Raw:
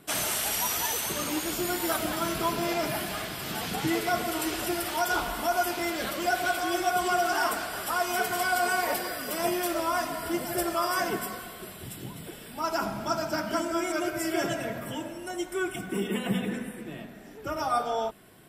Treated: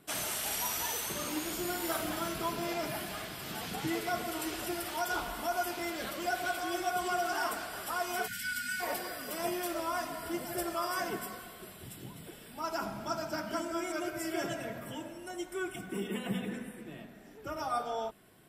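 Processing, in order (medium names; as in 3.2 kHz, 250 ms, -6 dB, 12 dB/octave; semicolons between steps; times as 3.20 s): 0.39–2.28 s: doubling 49 ms -6.5 dB; 8.27–8.81 s: spectral selection erased 270–1400 Hz; trim -6.5 dB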